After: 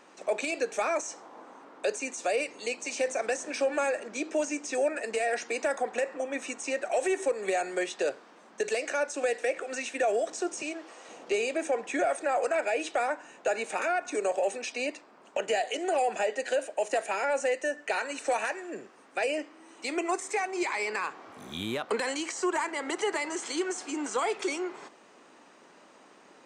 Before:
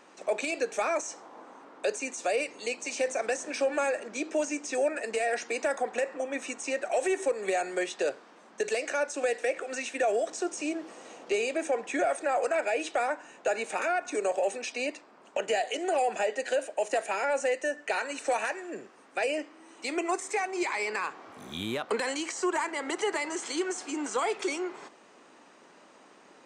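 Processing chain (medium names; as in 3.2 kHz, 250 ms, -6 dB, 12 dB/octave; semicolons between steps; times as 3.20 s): 10.62–11.09 s: frequency weighting A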